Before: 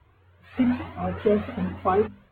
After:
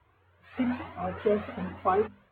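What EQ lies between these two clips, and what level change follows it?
HPF 130 Hz 6 dB/oct; bell 200 Hz -6 dB 2.7 oct; high shelf 2800 Hz -7.5 dB; 0.0 dB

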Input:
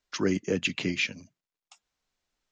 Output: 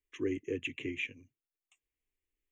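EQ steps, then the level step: bell 1800 Hz -6 dB 2.1 oct; fixed phaser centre 940 Hz, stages 8; fixed phaser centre 2100 Hz, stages 4; -2.0 dB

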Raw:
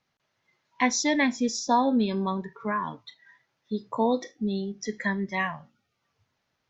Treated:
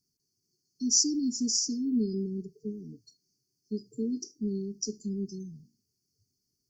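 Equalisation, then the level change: brick-wall FIR band-stop 450–4300 Hz; high shelf 3600 Hz +12 dB; -3.5 dB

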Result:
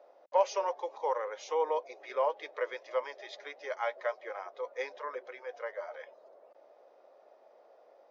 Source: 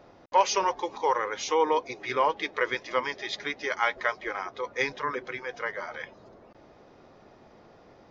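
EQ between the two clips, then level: ladder high-pass 510 Hz, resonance 60%; tilt shelf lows +3.5 dB, about 740 Hz; 0.0 dB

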